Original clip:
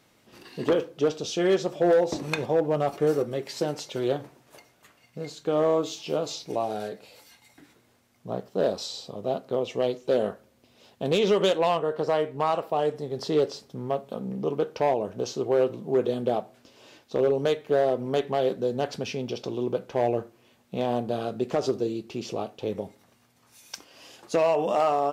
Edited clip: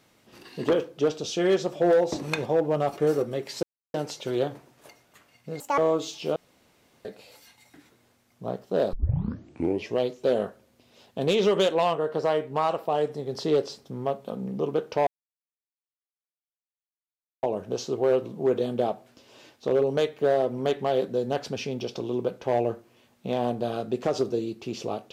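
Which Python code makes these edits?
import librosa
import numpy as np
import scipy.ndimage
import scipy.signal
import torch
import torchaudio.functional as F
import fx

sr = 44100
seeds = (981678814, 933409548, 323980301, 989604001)

y = fx.edit(x, sr, fx.insert_silence(at_s=3.63, length_s=0.31),
    fx.speed_span(start_s=5.29, length_s=0.33, speed=1.84),
    fx.room_tone_fill(start_s=6.2, length_s=0.69),
    fx.tape_start(start_s=8.77, length_s=1.06),
    fx.insert_silence(at_s=14.91, length_s=2.36), tone=tone)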